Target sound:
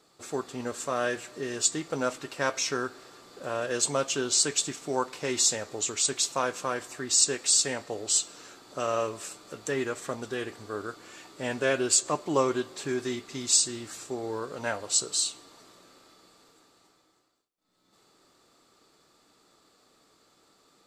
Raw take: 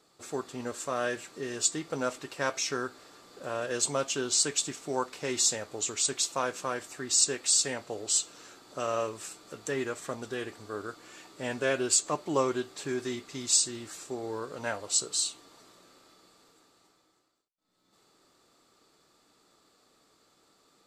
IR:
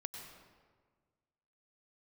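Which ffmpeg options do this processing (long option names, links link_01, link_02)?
-filter_complex "[0:a]asplit=2[link_01][link_02];[1:a]atrim=start_sample=2205,lowpass=9500[link_03];[link_02][link_03]afir=irnorm=-1:irlink=0,volume=-16.5dB[link_04];[link_01][link_04]amix=inputs=2:normalize=0,volume=1.5dB"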